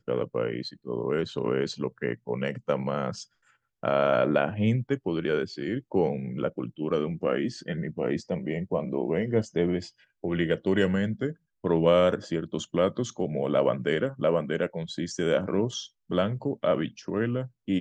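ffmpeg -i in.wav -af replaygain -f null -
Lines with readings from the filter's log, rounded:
track_gain = +7.5 dB
track_peak = 0.240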